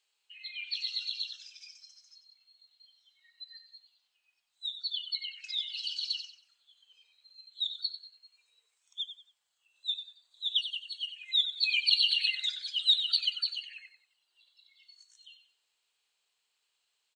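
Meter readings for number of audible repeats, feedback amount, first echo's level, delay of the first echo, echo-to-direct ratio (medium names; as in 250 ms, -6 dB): 3, 30%, -10.5 dB, 93 ms, -10.0 dB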